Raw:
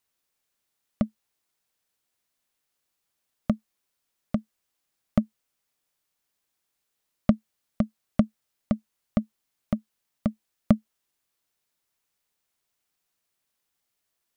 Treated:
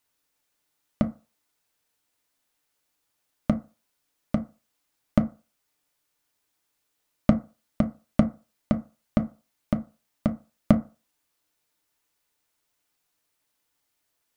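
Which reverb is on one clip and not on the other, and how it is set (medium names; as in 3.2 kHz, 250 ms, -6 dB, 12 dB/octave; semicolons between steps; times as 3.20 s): FDN reverb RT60 0.33 s, low-frequency decay 0.8×, high-frequency decay 0.4×, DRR 4.5 dB; trim +2.5 dB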